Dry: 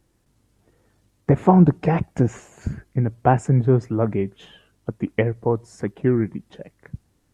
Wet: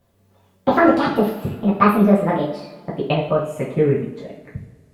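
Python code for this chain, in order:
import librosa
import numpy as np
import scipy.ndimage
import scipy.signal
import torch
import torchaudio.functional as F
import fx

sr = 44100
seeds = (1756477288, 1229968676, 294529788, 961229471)

y = fx.speed_glide(x, sr, from_pct=199, to_pct=98)
y = fx.rev_double_slope(y, sr, seeds[0], early_s=0.47, late_s=1.8, knee_db=-17, drr_db=-6.5)
y = F.gain(torch.from_numpy(y), -4.5).numpy()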